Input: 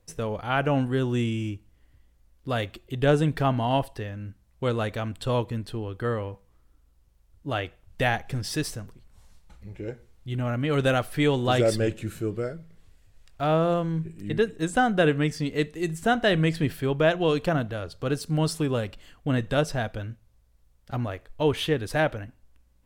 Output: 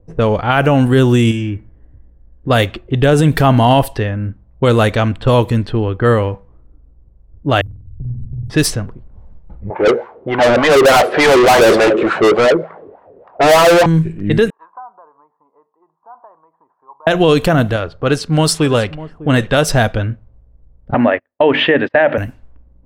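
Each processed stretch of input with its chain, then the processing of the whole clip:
1.31–2.50 s: de-hum 117.9 Hz, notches 19 + compression 4:1, threshold -32 dBFS + peaking EQ 1.7 kHz +10 dB 0.25 oct
7.61–8.50 s: inverse Chebyshev band-stop 610–4100 Hz, stop band 70 dB + compression 10:1, threshold -39 dBFS + flutter echo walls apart 8.3 m, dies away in 0.99 s
9.70–13.86 s: high-pass 40 Hz + wah-wah 3.4 Hz 370–1000 Hz, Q 4.5 + overdrive pedal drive 38 dB, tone 5.6 kHz, clips at -18.5 dBFS
14.50–17.07 s: compression, threshold -24 dBFS + Butterworth band-pass 1 kHz, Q 4.6
17.76–19.69 s: bass shelf 490 Hz -5.5 dB + delay 601 ms -17 dB
20.94–22.18 s: cabinet simulation 240–2900 Hz, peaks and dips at 250 Hz +9 dB, 590 Hz +9 dB, 880 Hz +5 dB, 1.8 kHz +10 dB, 2.7 kHz +4 dB + hum notches 50/100/150/200/250/300/350 Hz + gate -37 dBFS, range -35 dB
whole clip: level-controlled noise filter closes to 490 Hz, open at -23 dBFS; treble shelf 12 kHz +11.5 dB; loudness maximiser +17 dB; trim -1 dB

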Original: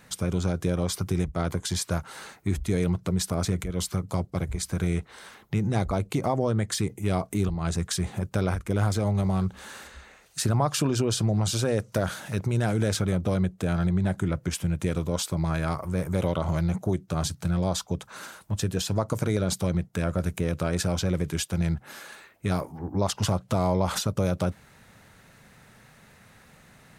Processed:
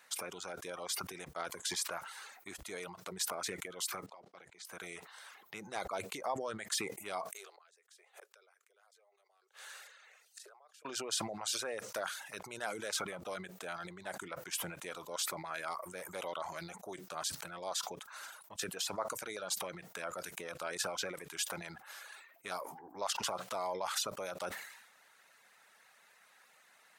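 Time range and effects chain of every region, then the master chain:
4.06–4.65 s: level held to a coarse grid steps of 19 dB + band-pass 160–5000 Hz
7.30–10.85 s: steep high-pass 390 Hz 72 dB/octave + peaking EQ 940 Hz -6 dB 0.58 oct + inverted gate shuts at -32 dBFS, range -27 dB
whole clip: high-pass 750 Hz 12 dB/octave; reverb removal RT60 0.63 s; decay stretcher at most 60 dB/s; trim -5.5 dB

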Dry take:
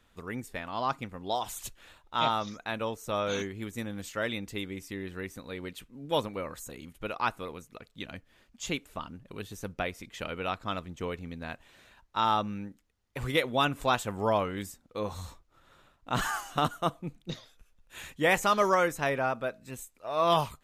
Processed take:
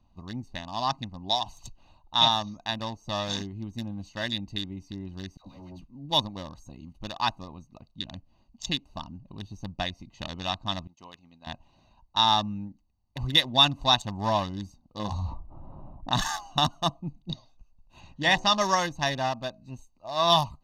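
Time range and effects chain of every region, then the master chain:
5.37–5.82 s: block-companded coder 5-bit + phase dispersion lows, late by 97 ms, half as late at 660 Hz + valve stage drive 38 dB, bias 0.65
10.87–11.47 s: high-pass 1.4 kHz 6 dB/octave + expander -55 dBFS
14.99–16.15 s: hum notches 50/100 Hz + level-controlled noise filter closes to 630 Hz, open at -29.5 dBFS + level flattener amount 50%
18.00–18.61 s: low-pass 6.3 kHz + de-hum 74.81 Hz, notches 25
whole clip: local Wiener filter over 25 samples; high-order bell 4.7 kHz +13 dB 1.2 oct; comb 1.1 ms, depth 82%

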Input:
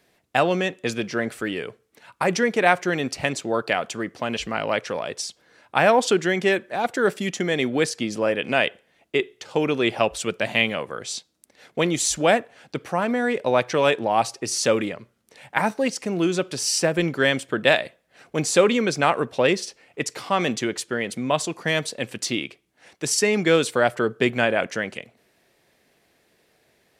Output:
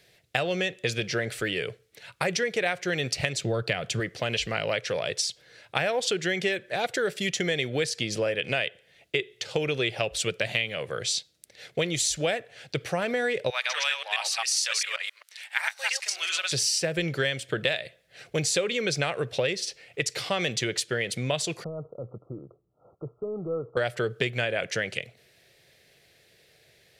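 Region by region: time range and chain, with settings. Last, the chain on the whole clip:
3.41–4.00 s: high-pass 55 Hz + tone controls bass +10 dB, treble -1 dB
13.50–16.52 s: chunks repeated in reverse 133 ms, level -0.5 dB + high-pass 1 kHz 24 dB/octave
21.64–23.77 s: waveshaping leveller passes 1 + compression 2:1, threshold -41 dBFS + brick-wall FIR low-pass 1.4 kHz
whole clip: graphic EQ 125/250/500/1000/2000/4000 Hz +7/-12/+4/-11/+3/+5 dB; compression 6:1, threshold -26 dBFS; trim +2.5 dB

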